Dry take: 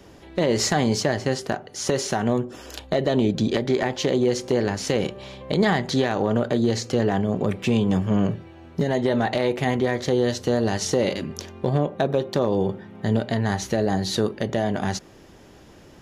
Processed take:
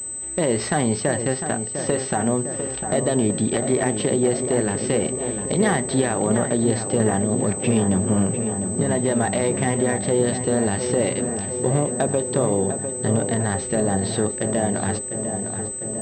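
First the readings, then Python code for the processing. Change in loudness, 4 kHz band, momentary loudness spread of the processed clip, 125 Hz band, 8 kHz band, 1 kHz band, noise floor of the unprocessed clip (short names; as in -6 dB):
+1.5 dB, -5.0 dB, 4 LU, +1.5 dB, +11.0 dB, +1.0 dB, -48 dBFS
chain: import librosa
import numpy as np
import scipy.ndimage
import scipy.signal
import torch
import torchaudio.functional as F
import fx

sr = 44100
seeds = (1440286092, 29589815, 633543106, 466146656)

y = fx.echo_filtered(x, sr, ms=702, feedback_pct=74, hz=2200.0, wet_db=-8.0)
y = fx.pwm(y, sr, carrier_hz=8100.0)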